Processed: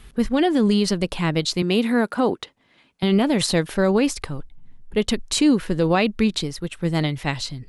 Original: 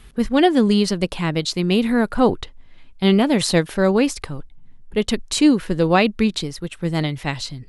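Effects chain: 1.62–3.03 HPF 200 Hz 12 dB/oct; limiter -9.5 dBFS, peak gain reduction 6.5 dB

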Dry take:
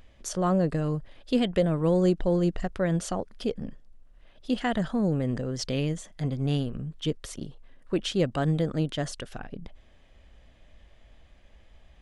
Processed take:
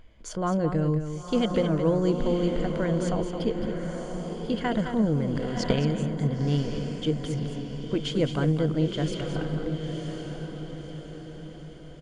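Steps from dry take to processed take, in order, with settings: ripple EQ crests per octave 1.8, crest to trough 7 dB; echo 0.216 s -8.5 dB; downsampling 22050 Hz; high shelf 3800 Hz -7.5 dB; notch 690 Hz, Q 15; on a send: diffused feedback echo 1.013 s, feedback 47%, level -6 dB; 5.35–5.79 on the sum: transient shaper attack +12 dB, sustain +8 dB

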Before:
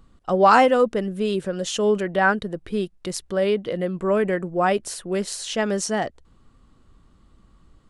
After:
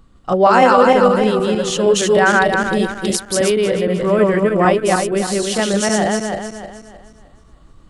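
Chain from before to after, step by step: regenerating reverse delay 0.155 s, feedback 59%, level -0.5 dB; 1.96–3.61 high shelf 4100 Hz +8.5 dB; maximiser +5 dB; gain -1 dB

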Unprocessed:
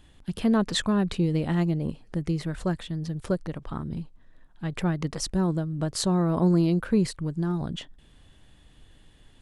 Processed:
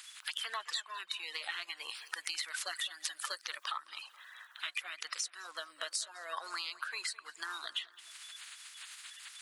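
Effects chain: bin magnitudes rounded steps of 30 dB; HPF 1300 Hz 24 dB/oct; compressor 16:1, threshold -51 dBFS, peak gain reduction 27 dB; 1.77–3.89 high shelf 6400 Hz +6 dB; darkening echo 0.212 s, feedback 54%, low-pass 4000 Hz, level -18 dB; gain +15.5 dB

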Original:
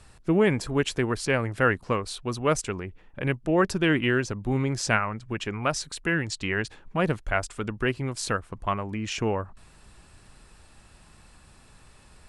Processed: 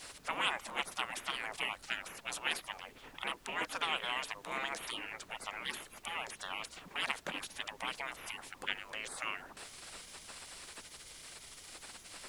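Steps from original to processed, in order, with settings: spectral gate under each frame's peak -25 dB weak; HPF 150 Hz 24 dB/oct; in parallel at +2.5 dB: compressor, threshold -57 dBFS, peak gain reduction 20.5 dB; on the sum: added noise pink -67 dBFS; Doppler distortion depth 0.13 ms; gain +5.5 dB

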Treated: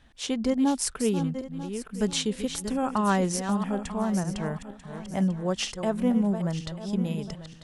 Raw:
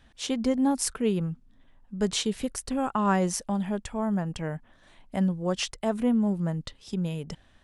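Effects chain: regenerating reverse delay 0.471 s, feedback 50%, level -9 dB; wow and flutter 21 cents

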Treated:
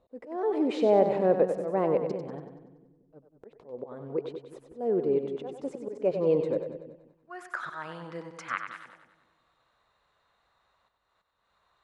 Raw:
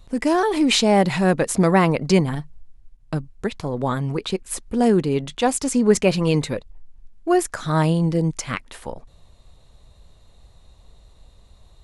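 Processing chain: auto swell 0.315 s; split-band echo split 360 Hz, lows 0.18 s, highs 95 ms, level -7.5 dB; band-pass sweep 500 Hz -> 1400 Hz, 6.87–7.37

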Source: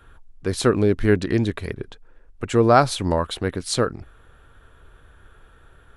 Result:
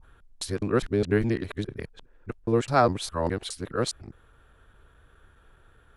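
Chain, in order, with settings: local time reversal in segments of 0.206 s; added harmonics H 3 -28 dB, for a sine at -1 dBFS; gain -5 dB

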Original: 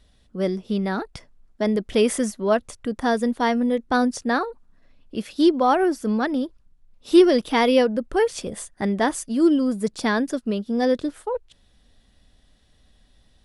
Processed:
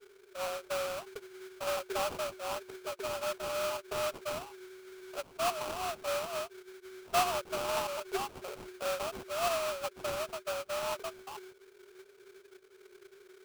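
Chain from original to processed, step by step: passive tone stack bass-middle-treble 10-0-1; frequency shift +360 Hz; sample-rate reducer 1900 Hz, jitter 20%; gain +6 dB

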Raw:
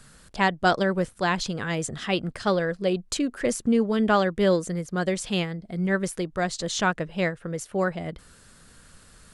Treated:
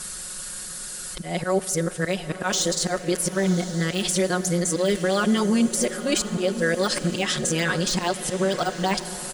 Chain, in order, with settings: whole clip reversed; de-esser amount 80%; tone controls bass -7 dB, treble +12 dB; comb 5.5 ms, depth 84%; in parallel at +0.5 dB: compressor, threshold -31 dBFS, peak gain reduction 17 dB; on the sum: auto swell 0.144 s; limiter -16.5 dBFS, peak gain reduction 9.5 dB; diffused feedback echo 1.004 s, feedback 45%, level -12 dB; on a send at -15.5 dB: reverb RT60 2.9 s, pre-delay 43 ms; on the sum: gain +3 dB

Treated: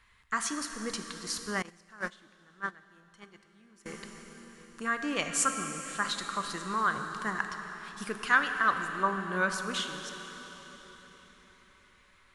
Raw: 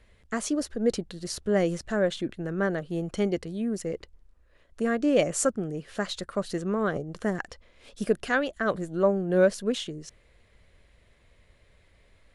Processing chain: plate-style reverb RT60 4.6 s, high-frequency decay 0.9×, DRR 5 dB; 1.62–3.86 gate -21 dBFS, range -21 dB; resonant low shelf 790 Hz -10 dB, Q 3

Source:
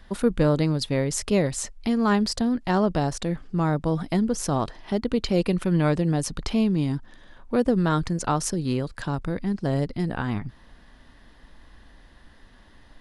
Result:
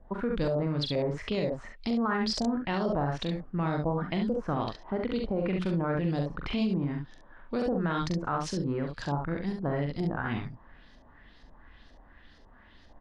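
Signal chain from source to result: LFO low-pass saw up 2.1 Hz 570–6400 Hz; early reflections 42 ms -6.5 dB, 69 ms -6 dB; limiter -14.5 dBFS, peak gain reduction 9.5 dB; gain -6 dB

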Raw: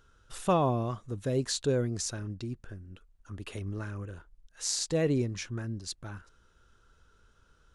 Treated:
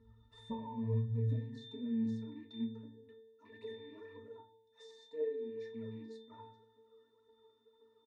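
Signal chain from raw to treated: rattling part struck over -36 dBFS, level -35 dBFS; high shelf 3700 Hz +6 dB; comb 2.9 ms, depth 72%; de-hum 66.73 Hz, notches 9; compressor 12:1, threshold -38 dBFS, peak gain reduction 18.5 dB; phaser 2 Hz, delay 3.7 ms, feedback 72%; octave resonator A#, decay 0.7 s; high-pass sweep 60 Hz -> 410 Hz, 0.16–2.54; on a send at -2.5 dB: reverb RT60 0.25 s, pre-delay 4 ms; on the sum: speed mistake 25 fps video run at 24 fps; gain +14.5 dB

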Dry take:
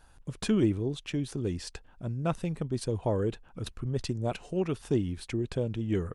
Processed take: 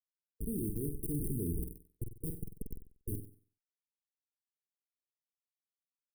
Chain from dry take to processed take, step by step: Doppler pass-by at 1.31, 15 m/s, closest 2.7 m; bell 970 Hz +13.5 dB 0.95 oct; Schmitt trigger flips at -38.5 dBFS; brick-wall FIR band-stop 470–8500 Hz; high shelf 7000 Hz +10 dB; flutter echo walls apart 8.1 m, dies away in 0.43 s; gain +7 dB

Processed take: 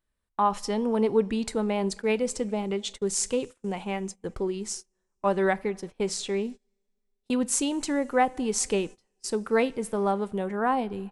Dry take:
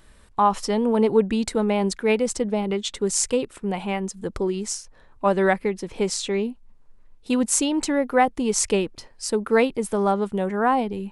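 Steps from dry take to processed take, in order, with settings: two-slope reverb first 0.31 s, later 3 s, from -18 dB, DRR 15.5 dB; gate -32 dBFS, range -24 dB; gain -5 dB

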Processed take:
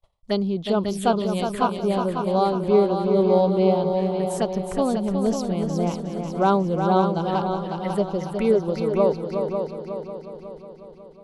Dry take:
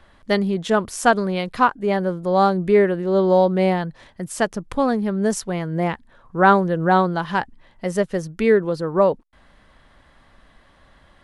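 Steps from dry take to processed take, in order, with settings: gate -49 dBFS, range -31 dB; envelope phaser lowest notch 270 Hz, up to 1800 Hz, full sweep at -19.5 dBFS; on a send: multi-head echo 0.182 s, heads second and third, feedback 54%, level -7 dB; on the sum: gain -2.5 dB

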